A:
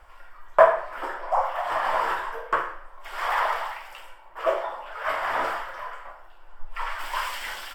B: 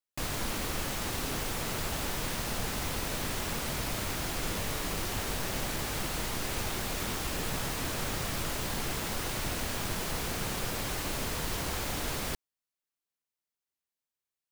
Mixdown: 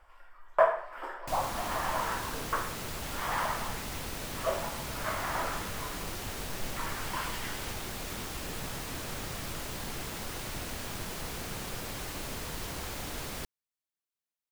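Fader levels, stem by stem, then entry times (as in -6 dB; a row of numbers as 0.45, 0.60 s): -8.0, -4.5 dB; 0.00, 1.10 s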